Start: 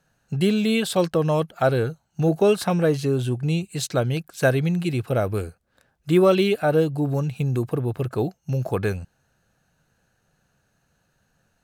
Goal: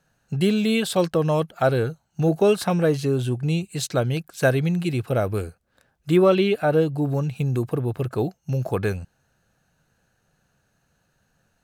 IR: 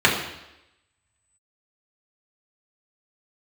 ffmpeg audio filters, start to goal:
-filter_complex "[0:a]asettb=1/sr,asplit=3[link_01][link_02][link_03];[link_01]atrim=end=6.164[link_04];[link_02]atrim=start=6.16:end=7.35,asetpts=PTS-STARTPTS,afade=type=in:duration=0.004:curve=qsin,afade=type=out:start_time=1.186:duration=0.004:curve=qsin,acrossover=split=4300[link_05][link_06];[link_06]acompressor=threshold=-49dB:ratio=4:attack=1:release=60[link_07];[link_05][link_07]amix=inputs=2:normalize=0[link_08];[link_03]atrim=start=7.346[link_09];[link_04][link_08]acrossfade=duration=0.004:curve1=hsin:curve2=qsin[link_10];[link_10][link_09]acrossfade=duration=0.004:curve1=qsin:curve2=hsin"

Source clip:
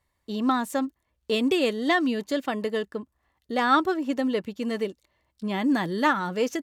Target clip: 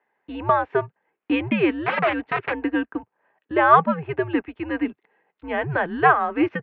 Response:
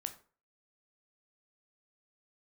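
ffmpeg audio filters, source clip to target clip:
-filter_complex "[0:a]asplit=3[link_01][link_02][link_03];[link_01]afade=type=out:start_time=1.81:duration=0.02[link_04];[link_02]aeval=exprs='(mod(11.2*val(0)+1,2)-1)/11.2':channel_layout=same,afade=type=in:start_time=1.81:duration=0.02,afade=type=out:start_time=2.52:duration=0.02[link_05];[link_03]afade=type=in:start_time=2.52:duration=0.02[link_06];[link_04][link_05][link_06]amix=inputs=3:normalize=0,highpass=frequency=430:width_type=q:width=0.5412,highpass=frequency=430:width_type=q:width=1.307,lowpass=frequency=2600:width_type=q:width=0.5176,lowpass=frequency=2600:width_type=q:width=0.7071,lowpass=frequency=2600:width_type=q:width=1.932,afreqshift=-150,volume=7.5dB"

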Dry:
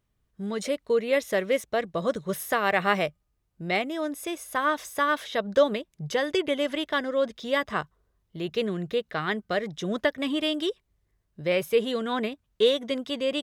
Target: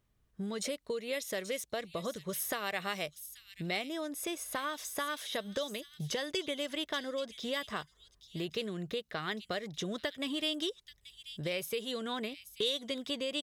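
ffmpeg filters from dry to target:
ffmpeg -i in.wav -filter_complex "[0:a]acrossover=split=3300[link_01][link_02];[link_01]acompressor=threshold=-35dB:ratio=6[link_03];[link_02]aecho=1:1:832:0.316[link_04];[link_03][link_04]amix=inputs=2:normalize=0" out.wav

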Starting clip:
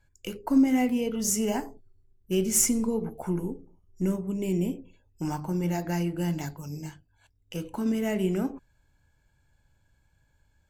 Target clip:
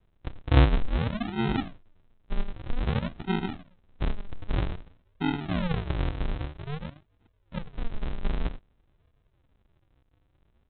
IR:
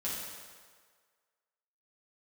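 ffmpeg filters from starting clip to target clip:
-af "adynamicequalizer=threshold=0.00708:dfrequency=300:dqfactor=5.3:tfrequency=300:tqfactor=5.3:attack=5:release=100:ratio=0.375:range=3:mode=boostabove:tftype=bell,aresample=8000,acrusher=samples=27:mix=1:aa=0.000001:lfo=1:lforange=27:lforate=0.52,aresample=44100"

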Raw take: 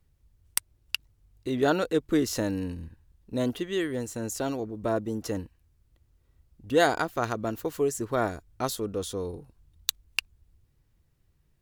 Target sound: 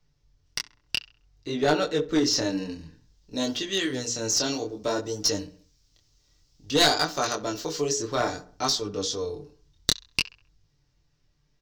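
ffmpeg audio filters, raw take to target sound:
ffmpeg -i in.wav -filter_complex "[0:a]aecho=1:1:6.8:0.53,acrossover=split=310|3700[link_01][link_02][link_03];[link_03]dynaudnorm=framelen=430:gausssize=11:maxgain=15dB[link_04];[link_01][link_02][link_04]amix=inputs=3:normalize=0,bass=frequency=250:gain=-3,treble=frequency=4000:gain=1,bandreject=frequency=60:width_type=h:width=6,bandreject=frequency=120:width_type=h:width=6,bandreject=frequency=180:width_type=h:width=6,bandreject=frequency=240:width_type=h:width=6,bandreject=frequency=300:width_type=h:width=6,bandreject=frequency=360:width_type=h:width=6,bandreject=frequency=420:width_type=h:width=6,bandreject=frequency=480:width_type=h:width=6,flanger=delay=19.5:depth=7.5:speed=0.57,highshelf=frequency=7700:width_type=q:width=3:gain=-13,acrossover=split=6900[link_05][link_06];[link_06]acompressor=threshold=-47dB:ratio=4:attack=1:release=60[link_07];[link_05][link_07]amix=inputs=2:normalize=0,asplit=2[link_08][link_09];[link_09]adelay=66,lowpass=frequency=2100:poles=1,volume=-17dB,asplit=2[link_10][link_11];[link_11]adelay=66,lowpass=frequency=2100:poles=1,volume=0.5,asplit=2[link_12][link_13];[link_13]adelay=66,lowpass=frequency=2100:poles=1,volume=0.5,asplit=2[link_14][link_15];[link_15]adelay=66,lowpass=frequency=2100:poles=1,volume=0.5[link_16];[link_08][link_10][link_12][link_14][link_16]amix=inputs=5:normalize=0,aeval=exprs='clip(val(0),-1,0.0841)':channel_layout=same,volume=3.5dB" out.wav

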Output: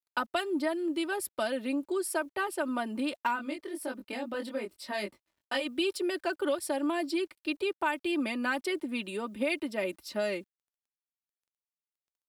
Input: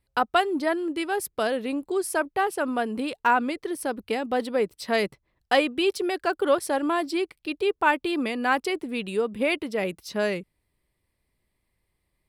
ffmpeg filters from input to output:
ffmpeg -i in.wav -filter_complex "[0:a]highpass=frequency=130:poles=1,bandreject=frequency=6200:width=9.6,aecho=1:1:3.3:0.75,acrossover=split=170|3000[link_01][link_02][link_03];[link_02]acompressor=threshold=-22dB:ratio=6[link_04];[link_01][link_04][link_03]amix=inputs=3:normalize=0,acrusher=bits=10:mix=0:aa=0.000001,asplit=3[link_05][link_06][link_07];[link_05]afade=type=out:start_time=3.35:duration=0.02[link_08];[link_06]flanger=delay=19.5:depth=3.1:speed=1,afade=type=in:start_time=3.35:duration=0.02,afade=type=out:start_time=5.65:duration=0.02[link_09];[link_07]afade=type=in:start_time=5.65:duration=0.02[link_10];[link_08][link_09][link_10]amix=inputs=3:normalize=0,volume=-5dB" out.wav

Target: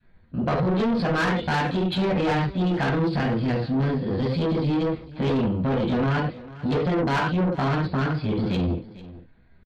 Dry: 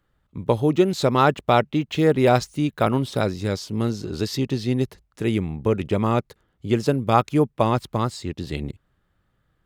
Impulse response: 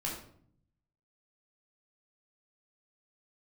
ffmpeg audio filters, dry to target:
-filter_complex "[1:a]atrim=start_sample=2205,afade=type=out:start_time=0.19:duration=0.01,atrim=end_sample=8820,asetrate=52920,aresample=44100[link_01];[0:a][link_01]afir=irnorm=-1:irlink=0,aresample=8000,volume=11dB,asoftclip=hard,volume=-11dB,aresample=44100,alimiter=limit=-13.5dB:level=0:latency=1:release=82,adynamicequalizer=threshold=0.0178:dfrequency=530:dqfactor=0.77:tfrequency=530:tqfactor=0.77:attack=5:release=100:ratio=0.375:range=3.5:mode=cutabove:tftype=bell,asoftclip=type=tanh:threshold=-26dB,aemphasis=mode=reproduction:type=cd,asetrate=53981,aresample=44100,atempo=0.816958,asplit=2[link_02][link_03];[link_03]aecho=0:1:447:0.126[link_04];[link_02][link_04]amix=inputs=2:normalize=0,volume=6dB"

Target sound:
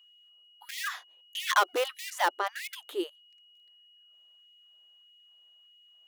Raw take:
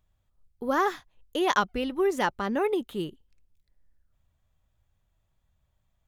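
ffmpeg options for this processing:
ffmpeg -i in.wav -filter_complex "[0:a]asplit=3[link_01][link_02][link_03];[link_01]afade=type=out:start_time=1.48:duration=0.02[link_04];[link_02]aeval=exprs='0.299*(cos(1*acos(clip(val(0)/0.299,-1,1)))-cos(1*PI/2))+0.0422*(cos(5*acos(clip(val(0)/0.299,-1,1)))-cos(5*PI/2))':channel_layout=same,afade=type=in:start_time=1.48:duration=0.02,afade=type=out:start_time=1.98:duration=0.02[link_05];[link_03]afade=type=in:start_time=1.98:duration=0.02[link_06];[link_04][link_05][link_06]amix=inputs=3:normalize=0,aeval=exprs='val(0)+0.00112*sin(2*PI*2900*n/s)':channel_layout=same,asplit=2[link_07][link_08];[link_08]aeval=exprs='(mod(10*val(0)+1,2)-1)/10':channel_layout=same,volume=-12dB[link_09];[link_07][link_09]amix=inputs=2:normalize=0,afftfilt=real='re*gte(b*sr/1024,270*pow(1900/270,0.5+0.5*sin(2*PI*1.6*pts/sr)))':imag='im*gte(b*sr/1024,270*pow(1900/270,0.5+0.5*sin(2*PI*1.6*pts/sr)))':win_size=1024:overlap=0.75" out.wav

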